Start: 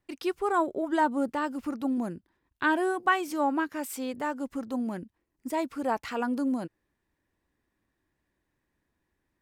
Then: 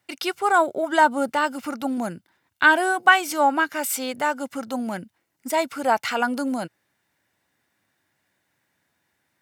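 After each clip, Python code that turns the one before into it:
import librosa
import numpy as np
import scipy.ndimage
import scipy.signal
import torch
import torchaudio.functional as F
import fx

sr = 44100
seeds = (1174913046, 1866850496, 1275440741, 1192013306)

y = scipy.signal.sosfilt(scipy.signal.butter(4, 100.0, 'highpass', fs=sr, output='sos'), x)
y = fx.tilt_shelf(y, sr, db=-5.0, hz=760.0)
y = y + 0.36 * np.pad(y, (int(1.4 * sr / 1000.0), 0))[:len(y)]
y = F.gain(torch.from_numpy(y), 7.5).numpy()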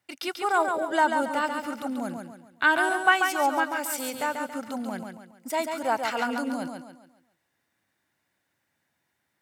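y = fx.echo_feedback(x, sr, ms=139, feedback_pct=39, wet_db=-5.5)
y = F.gain(torch.from_numpy(y), -5.5).numpy()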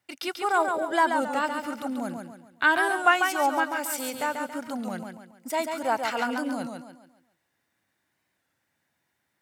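y = fx.record_warp(x, sr, rpm=33.33, depth_cents=100.0)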